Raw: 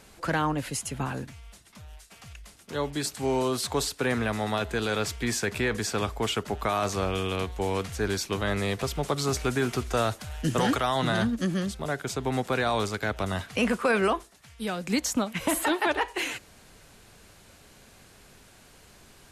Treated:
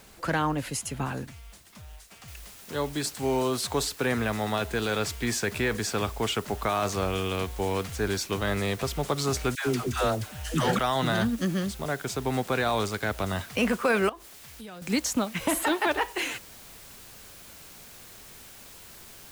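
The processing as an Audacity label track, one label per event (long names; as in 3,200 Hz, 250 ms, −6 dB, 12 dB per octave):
2.280000	2.280000	noise floor change −60 dB −49 dB
9.550000	10.790000	all-pass dispersion lows, late by 117 ms, half as late at 660 Hz
14.090000	14.820000	downward compressor 5 to 1, threshold −40 dBFS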